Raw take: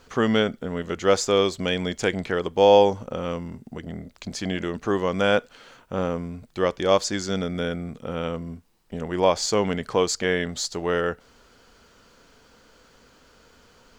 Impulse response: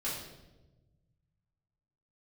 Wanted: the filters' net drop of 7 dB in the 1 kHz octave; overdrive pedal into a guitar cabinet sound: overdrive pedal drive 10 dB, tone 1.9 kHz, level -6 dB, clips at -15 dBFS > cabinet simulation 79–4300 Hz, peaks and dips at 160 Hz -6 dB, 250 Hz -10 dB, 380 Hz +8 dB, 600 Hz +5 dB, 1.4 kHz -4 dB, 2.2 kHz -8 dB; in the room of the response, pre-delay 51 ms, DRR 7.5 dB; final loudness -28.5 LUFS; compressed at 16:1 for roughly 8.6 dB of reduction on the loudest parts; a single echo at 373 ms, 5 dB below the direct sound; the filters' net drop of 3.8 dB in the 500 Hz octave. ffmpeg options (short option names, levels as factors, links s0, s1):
-filter_complex "[0:a]equalizer=f=500:t=o:g=-7.5,equalizer=f=1000:t=o:g=-6.5,acompressor=threshold=0.0447:ratio=16,aecho=1:1:373:0.562,asplit=2[s0][s1];[1:a]atrim=start_sample=2205,adelay=51[s2];[s1][s2]afir=irnorm=-1:irlink=0,volume=0.266[s3];[s0][s3]amix=inputs=2:normalize=0,asplit=2[s4][s5];[s5]highpass=f=720:p=1,volume=3.16,asoftclip=type=tanh:threshold=0.178[s6];[s4][s6]amix=inputs=2:normalize=0,lowpass=f=1900:p=1,volume=0.501,highpass=79,equalizer=f=160:t=q:w=4:g=-6,equalizer=f=250:t=q:w=4:g=-10,equalizer=f=380:t=q:w=4:g=8,equalizer=f=600:t=q:w=4:g=5,equalizer=f=1400:t=q:w=4:g=-4,equalizer=f=2200:t=q:w=4:g=-8,lowpass=f=4300:w=0.5412,lowpass=f=4300:w=1.3066,volume=1.5"